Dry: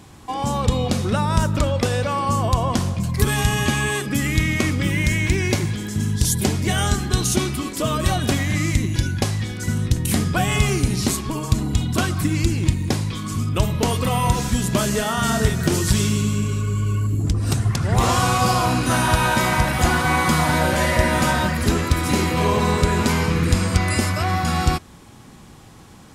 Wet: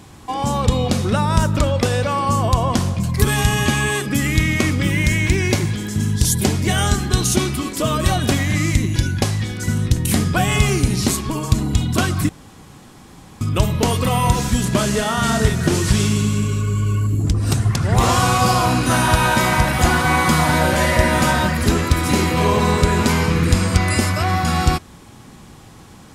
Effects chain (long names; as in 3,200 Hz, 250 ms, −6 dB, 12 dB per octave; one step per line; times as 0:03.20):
0:12.29–0:13.41: fill with room tone
0:14.65–0:16.46: variable-slope delta modulation 64 kbit/s
level +2.5 dB